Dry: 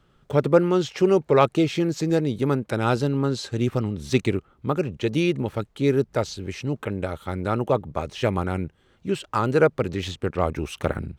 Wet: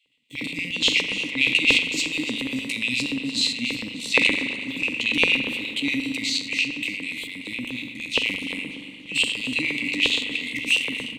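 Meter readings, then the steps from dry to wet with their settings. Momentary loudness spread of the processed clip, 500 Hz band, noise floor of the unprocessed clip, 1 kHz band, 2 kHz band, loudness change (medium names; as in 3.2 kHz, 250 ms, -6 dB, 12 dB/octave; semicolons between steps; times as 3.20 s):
12 LU, -14.5 dB, -62 dBFS, -13.5 dB, +12.5 dB, +1.5 dB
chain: spectral sustain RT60 0.53 s; transient shaper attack -3 dB, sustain +8 dB; peaking EQ 2.7 kHz +14.5 dB 0.28 oct; on a send: frequency-shifting echo 292 ms, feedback 40%, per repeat +100 Hz, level -15 dB; on the sum: FFT band-reject 320–1900 Hz; resampled via 32 kHz; in parallel at -8 dB: saturation -16.5 dBFS, distortion -16 dB; on the sum: gate -45 dBFS, range -8 dB; LFO high-pass square 8.5 Hz 410–2600 Hz; rippled EQ curve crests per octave 1, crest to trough 8 dB; spring tank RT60 2.2 s, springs 41 ms, chirp 55 ms, DRR 8 dB; trim -2.5 dB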